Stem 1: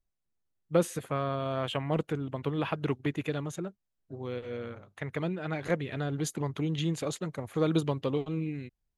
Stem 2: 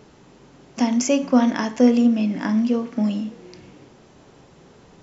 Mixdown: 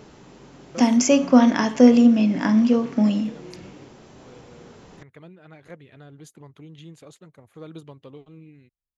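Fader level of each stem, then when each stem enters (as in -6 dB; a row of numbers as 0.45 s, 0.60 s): -13.0 dB, +2.5 dB; 0.00 s, 0.00 s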